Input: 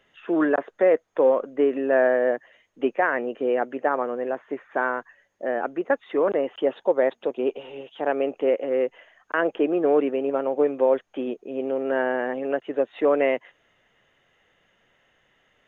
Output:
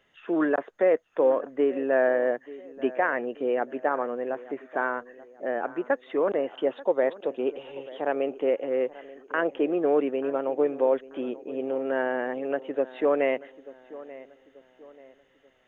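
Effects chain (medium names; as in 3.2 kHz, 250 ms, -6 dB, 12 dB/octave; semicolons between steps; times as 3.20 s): filtered feedback delay 886 ms, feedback 40%, low-pass 2.2 kHz, level -18 dB; trim -3 dB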